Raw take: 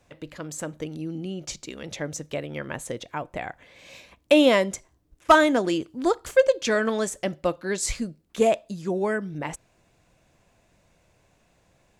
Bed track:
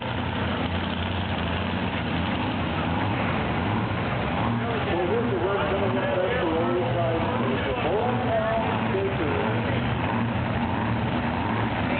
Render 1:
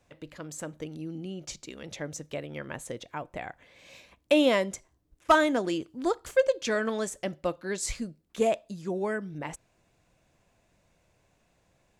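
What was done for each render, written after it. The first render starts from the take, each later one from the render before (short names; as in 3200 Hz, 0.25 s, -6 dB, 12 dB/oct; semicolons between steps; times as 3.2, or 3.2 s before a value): gain -5 dB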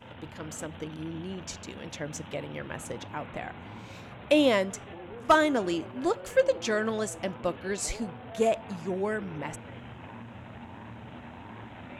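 add bed track -19 dB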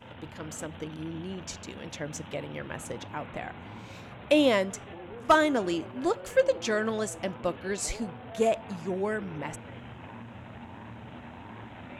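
nothing audible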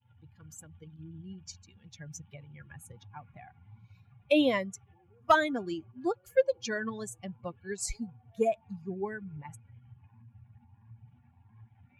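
per-bin expansion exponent 2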